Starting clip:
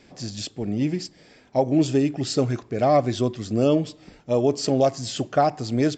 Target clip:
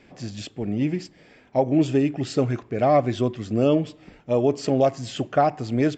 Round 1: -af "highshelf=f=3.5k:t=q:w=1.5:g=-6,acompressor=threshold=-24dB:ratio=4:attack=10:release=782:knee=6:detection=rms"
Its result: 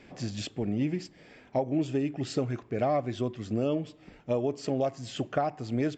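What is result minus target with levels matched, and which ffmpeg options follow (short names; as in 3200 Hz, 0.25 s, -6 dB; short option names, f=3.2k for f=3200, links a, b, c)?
compressor: peak gain reduction +10 dB
-af "highshelf=f=3.5k:t=q:w=1.5:g=-6"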